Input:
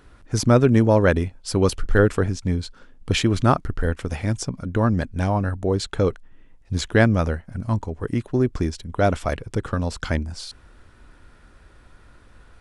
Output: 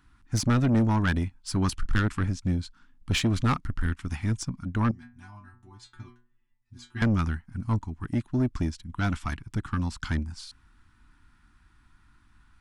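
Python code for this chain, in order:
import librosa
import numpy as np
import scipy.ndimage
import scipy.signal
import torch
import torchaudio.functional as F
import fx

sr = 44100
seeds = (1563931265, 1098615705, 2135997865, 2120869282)

y = scipy.signal.sosfilt(scipy.signal.cheby1(2, 1.0, [280.0, 950.0], 'bandstop', fs=sr, output='sos'), x)
y = fx.stiff_resonator(y, sr, f0_hz=120.0, decay_s=0.38, stiffness=0.002, at=(4.91, 7.02))
y = 10.0 ** (-19.0 / 20.0) * np.tanh(y / 10.0 ** (-19.0 / 20.0))
y = fx.upward_expand(y, sr, threshold_db=-41.0, expansion=1.5)
y = F.gain(torch.from_numpy(y), 1.5).numpy()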